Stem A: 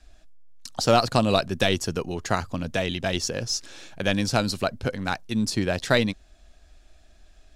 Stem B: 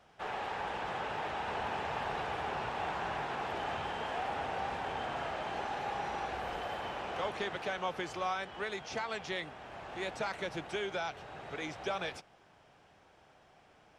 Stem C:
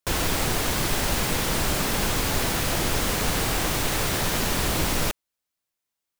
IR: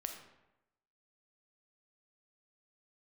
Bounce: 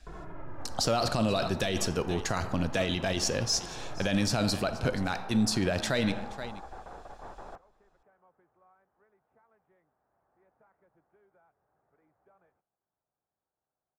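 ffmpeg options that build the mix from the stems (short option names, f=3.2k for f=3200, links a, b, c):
-filter_complex "[0:a]volume=-3dB,asplit=4[a][b][c][d];[b]volume=-4.5dB[e];[c]volume=-17dB[f];[1:a]adelay=400,volume=-4dB[g];[2:a]asplit=2[h][i];[i]adelay=2.3,afreqshift=-0.84[j];[h][j]amix=inputs=2:normalize=1,volume=-9dB[k];[d]apad=whole_len=634238[l];[g][l]sidechaingate=range=-25dB:threshold=-54dB:ratio=16:detection=peak[m];[m][k]amix=inputs=2:normalize=0,lowpass=f=1.5k:w=0.5412,lowpass=f=1.5k:w=1.3066,alimiter=level_in=12dB:limit=-24dB:level=0:latency=1:release=62,volume=-12dB,volume=0dB[n];[3:a]atrim=start_sample=2205[o];[e][o]afir=irnorm=-1:irlink=0[p];[f]aecho=0:1:476:1[q];[a][n][p][q]amix=inputs=4:normalize=0,alimiter=limit=-17.5dB:level=0:latency=1:release=17"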